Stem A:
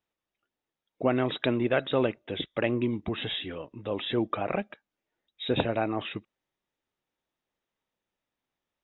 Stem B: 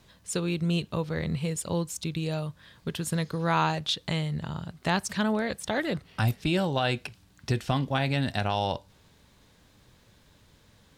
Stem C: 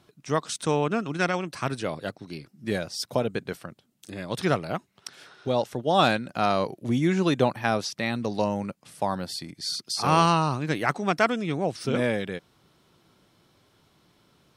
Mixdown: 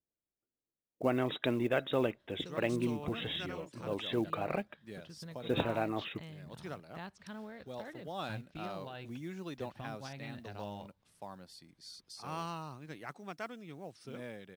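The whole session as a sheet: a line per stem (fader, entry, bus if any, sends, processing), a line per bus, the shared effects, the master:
-5.5 dB, 0.00 s, no send, level-controlled noise filter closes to 480 Hz, open at -27 dBFS
-19.5 dB, 2.10 s, no send, low-pass 3.6 kHz 12 dB/octave
-20.0 dB, 2.20 s, no send, modulation noise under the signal 33 dB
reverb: none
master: short-mantissa float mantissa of 4-bit

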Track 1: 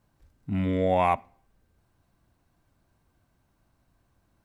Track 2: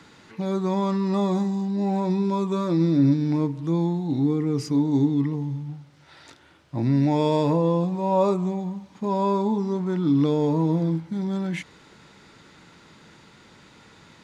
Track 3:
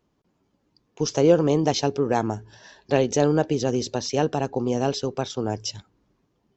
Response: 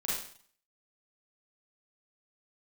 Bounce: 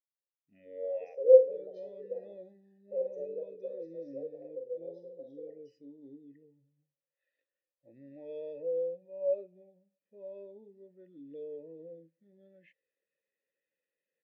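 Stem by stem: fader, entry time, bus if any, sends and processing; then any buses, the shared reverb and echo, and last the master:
+2.5 dB, 0.00 s, send -18 dB, peak limiter -16.5 dBFS, peak gain reduction 5.5 dB
0.0 dB, 1.10 s, no send, bass shelf 100 Hz +8.5 dB
-10.5 dB, 0.00 s, send -5 dB, spectral gate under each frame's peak -15 dB strong; peaking EQ 490 Hz +7.5 dB 0.48 oct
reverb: on, RT60 0.50 s, pre-delay 34 ms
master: vowel filter e; treble shelf 2.6 kHz +9.5 dB; spectral contrast expander 1.5:1

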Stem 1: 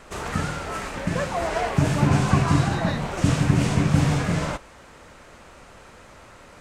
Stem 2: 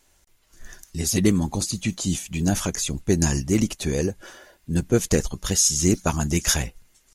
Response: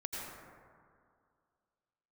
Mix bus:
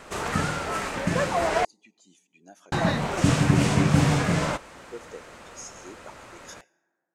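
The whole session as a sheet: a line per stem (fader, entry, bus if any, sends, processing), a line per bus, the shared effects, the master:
+2.0 dB, 0.00 s, muted 1.65–2.72 s, no send, none
-18.5 dB, 0.00 s, send -19.5 dB, high-pass 480 Hz 12 dB/octave; treble shelf 4.8 kHz -8 dB; spectral contrast expander 1.5:1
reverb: on, RT60 2.2 s, pre-delay 77 ms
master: bass shelf 91 Hz -9.5 dB

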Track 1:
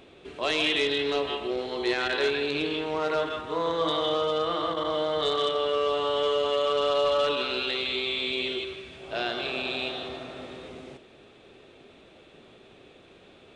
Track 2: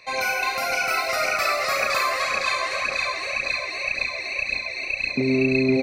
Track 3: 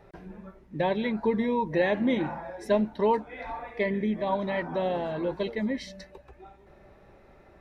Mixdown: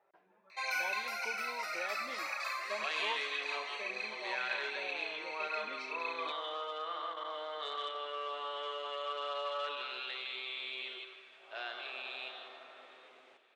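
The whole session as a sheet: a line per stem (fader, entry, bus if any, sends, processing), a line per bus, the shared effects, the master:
-4.0 dB, 2.40 s, no send, treble shelf 2.6 kHz -9 dB
-2.0 dB, 0.50 s, no send, auto duck -11 dB, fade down 1.50 s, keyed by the third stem
-5.0 dB, 0.00 s, no send, level-controlled noise filter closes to 2 kHz, open at -24 dBFS; peaking EQ 1.8 kHz -9 dB 1.5 oct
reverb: none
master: high-pass 1.1 kHz 12 dB/octave; treble shelf 4.7 kHz -7.5 dB

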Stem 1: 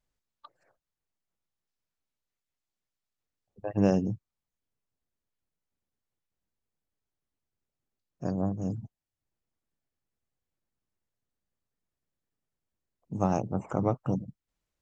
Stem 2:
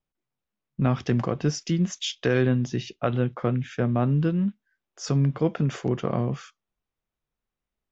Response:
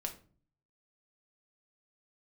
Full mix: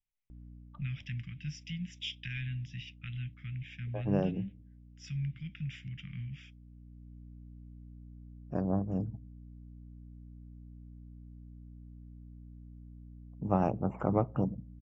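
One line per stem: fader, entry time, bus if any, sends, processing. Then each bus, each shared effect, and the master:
-2.0 dB, 0.30 s, send -17 dB, hum 60 Hz, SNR 12 dB; auto duck -6 dB, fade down 0.25 s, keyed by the second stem
-2.0 dB, 0.00 s, no send, elliptic band-stop 180–2200 Hz, stop band 50 dB; peaking EQ 250 Hz -14 dB 2.7 oct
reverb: on, RT60 0.40 s, pre-delay 5 ms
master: Savitzky-Golay filter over 25 samples

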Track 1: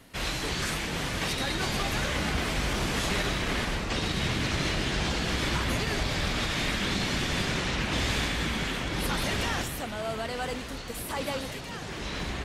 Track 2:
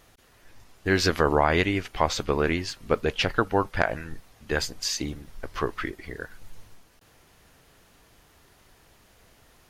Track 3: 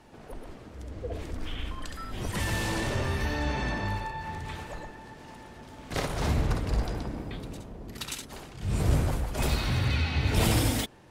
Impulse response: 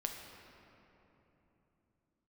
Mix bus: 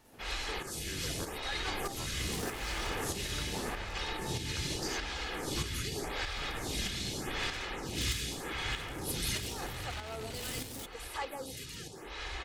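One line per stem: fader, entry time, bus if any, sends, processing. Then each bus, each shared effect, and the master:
-4.0 dB, 0.05 s, no send, comb 2.4 ms, depth 42%; lamp-driven phase shifter 0.84 Hz
-10.0 dB, 0.00 s, no send, compression, threshold -32 dBFS, peak gain reduction 16 dB
-4.0 dB, 0.00 s, muted 5.76–6.36 s, no send, one-sided wavefolder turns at -24.5 dBFS; peak limiter -21.5 dBFS, peak gain reduction 8.5 dB; saturation -37 dBFS, distortion -7 dB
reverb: none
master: treble shelf 4.4 kHz +8 dB; tremolo saw up 1.6 Hz, depth 50%

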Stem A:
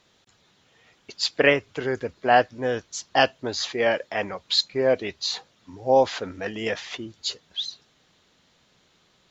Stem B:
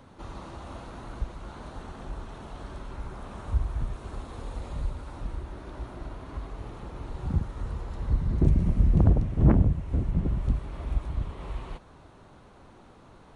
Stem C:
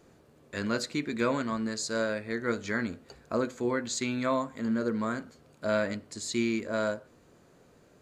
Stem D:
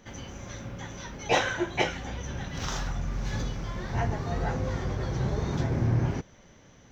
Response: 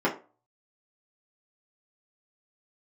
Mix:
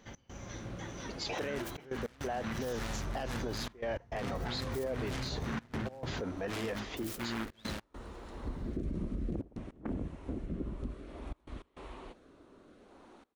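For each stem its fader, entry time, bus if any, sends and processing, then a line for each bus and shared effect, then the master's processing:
-6.5 dB, 0.00 s, no send, peak limiter -13.5 dBFS, peak gain reduction 9.5 dB; tilt shelf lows +5 dB, about 1.3 kHz
-2.5 dB, 0.35 s, no send, resonant low shelf 190 Hz -10 dB, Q 1.5; rotary cabinet horn 0.6 Hz
-13.0 dB, 0.85 s, no send, tone controls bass +12 dB, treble +11 dB; FFT band-reject 2.3–6.9 kHz; delay time shaken by noise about 1.3 kHz, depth 0.36 ms
-5.0 dB, 0.00 s, no send, compression, threshold -27 dBFS, peak gain reduction 9 dB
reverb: none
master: trance gate "x.xxxxxxxxxx." 102 bpm -24 dB; peak limiter -28 dBFS, peak gain reduction 12.5 dB

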